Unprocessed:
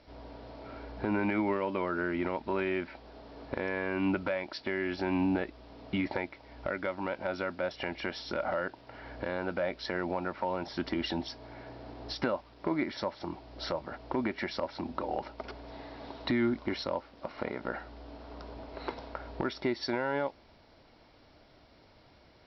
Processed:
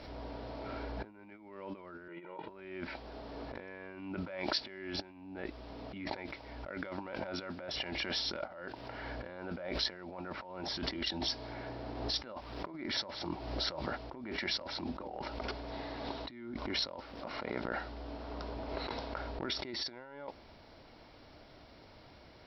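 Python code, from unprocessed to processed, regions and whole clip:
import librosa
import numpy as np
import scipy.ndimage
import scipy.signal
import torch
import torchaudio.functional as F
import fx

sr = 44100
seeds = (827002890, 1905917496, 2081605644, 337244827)

y = fx.chain(x, sr, fx.cheby1_bandpass(low_hz=160.0, high_hz=3100.0, order=3),
    fx.comb(ms=2.1, depth=0.96), at=(2.08, 2.48))
y = fx.over_compress(y, sr, threshold_db=-39.0, ratio=-0.5)
y = fx.dynamic_eq(y, sr, hz=4300.0, q=1.0, threshold_db=-51.0, ratio=4.0, max_db=5)
y = fx.pre_swell(y, sr, db_per_s=49.0)
y = y * 10.0 ** (-3.0 / 20.0)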